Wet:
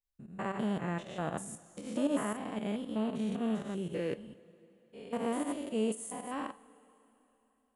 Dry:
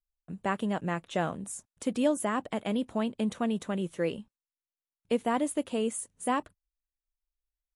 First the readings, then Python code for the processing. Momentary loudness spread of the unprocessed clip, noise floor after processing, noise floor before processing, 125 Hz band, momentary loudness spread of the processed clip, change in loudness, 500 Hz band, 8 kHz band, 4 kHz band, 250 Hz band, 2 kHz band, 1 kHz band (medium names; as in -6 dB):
7 LU, -75 dBFS, under -85 dBFS, -2.5 dB, 11 LU, -4.5 dB, -5.0 dB, -6.0 dB, -5.5 dB, -3.0 dB, -6.0 dB, -6.5 dB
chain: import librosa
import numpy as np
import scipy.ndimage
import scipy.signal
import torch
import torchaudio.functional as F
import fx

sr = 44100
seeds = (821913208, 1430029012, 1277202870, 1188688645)

y = fx.spec_steps(x, sr, hold_ms=200)
y = fx.volume_shaper(y, sr, bpm=116, per_beat=2, depth_db=-12, release_ms=101.0, shape='fast start')
y = fx.rev_double_slope(y, sr, seeds[0], early_s=0.29, late_s=3.5, knee_db=-18, drr_db=11.5)